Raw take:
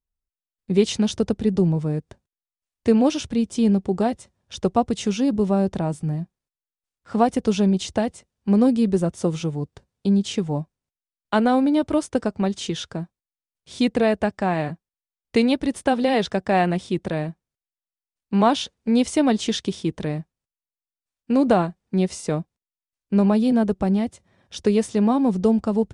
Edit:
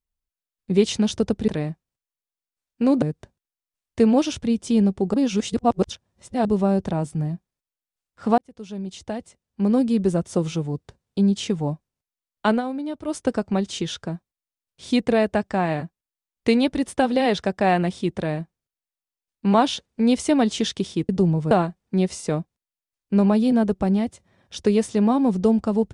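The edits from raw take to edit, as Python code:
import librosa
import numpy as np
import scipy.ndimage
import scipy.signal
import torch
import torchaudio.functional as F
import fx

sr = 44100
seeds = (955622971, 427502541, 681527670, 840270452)

y = fx.edit(x, sr, fx.swap(start_s=1.48, length_s=0.42, other_s=19.97, other_length_s=1.54),
    fx.reverse_span(start_s=4.02, length_s=1.31),
    fx.fade_in_span(start_s=7.26, length_s=1.78),
    fx.fade_down_up(start_s=11.38, length_s=0.69, db=-10.0, fade_s=0.12, curve='qsin'), tone=tone)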